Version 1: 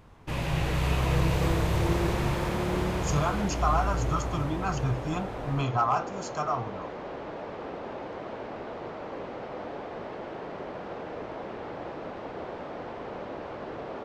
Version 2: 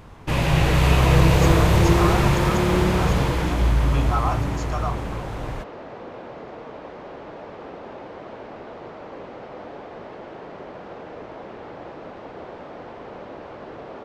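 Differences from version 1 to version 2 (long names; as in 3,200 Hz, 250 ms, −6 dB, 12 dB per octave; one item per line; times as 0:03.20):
speech: entry −1.65 s
first sound +9.5 dB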